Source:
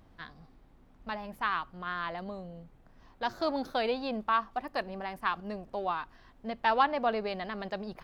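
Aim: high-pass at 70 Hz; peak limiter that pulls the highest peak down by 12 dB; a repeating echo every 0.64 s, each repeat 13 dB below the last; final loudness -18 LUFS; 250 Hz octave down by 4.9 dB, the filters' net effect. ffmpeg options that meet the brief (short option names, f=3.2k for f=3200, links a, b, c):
-af "highpass=70,equalizer=f=250:t=o:g=-6,alimiter=level_in=1dB:limit=-24dB:level=0:latency=1,volume=-1dB,aecho=1:1:640|1280|1920:0.224|0.0493|0.0108,volume=19.5dB"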